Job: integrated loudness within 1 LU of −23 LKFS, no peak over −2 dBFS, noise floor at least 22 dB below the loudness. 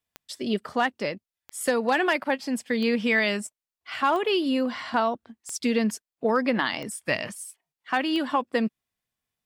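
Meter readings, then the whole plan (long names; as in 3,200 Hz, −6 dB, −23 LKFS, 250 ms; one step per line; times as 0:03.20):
number of clicks 7; integrated loudness −26.0 LKFS; sample peak −11.5 dBFS; target loudness −23.0 LKFS
→ click removal
level +3 dB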